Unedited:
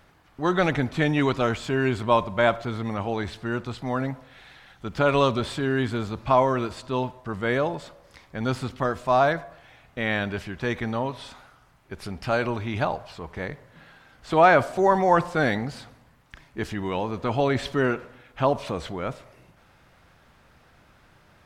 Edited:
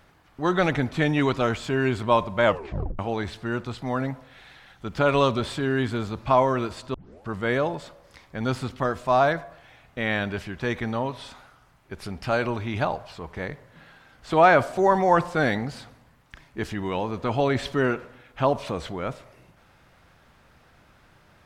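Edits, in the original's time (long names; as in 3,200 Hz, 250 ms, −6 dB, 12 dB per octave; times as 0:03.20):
0:02.44: tape stop 0.55 s
0:06.94: tape start 0.34 s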